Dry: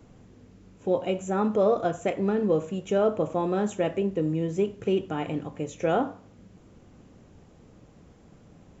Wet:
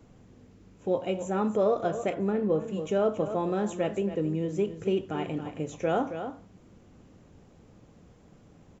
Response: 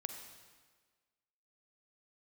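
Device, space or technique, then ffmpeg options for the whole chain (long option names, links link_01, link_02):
ducked delay: -filter_complex "[0:a]asplit=3[link_01][link_02][link_03];[link_02]adelay=272,volume=-9dB[link_04];[link_03]apad=whole_len=400091[link_05];[link_04][link_05]sidechaincompress=threshold=-27dB:ratio=8:attack=16:release=184[link_06];[link_01][link_06]amix=inputs=2:normalize=0,asettb=1/sr,asplit=3[link_07][link_08][link_09];[link_07]atrim=end=2.144[link_10];[link_08]atrim=start=2.14:end=2.68,asetpts=PTS-STARTPTS,afade=type=in:duration=0.004:curve=qsin,afade=type=out:start_time=0.536:duration=0.004:curve=qsin,highshelf=frequency=3800:gain=-10[link_11];[link_09]atrim=start=2.676[link_12];[link_10][link_11]acrossfade=duration=0.004:curve1=hsin:curve2=qsin[link_13];[link_13][link_12]acrossfade=duration=0.004:curve1=qsin:curve2=hsin,volume=-2.5dB"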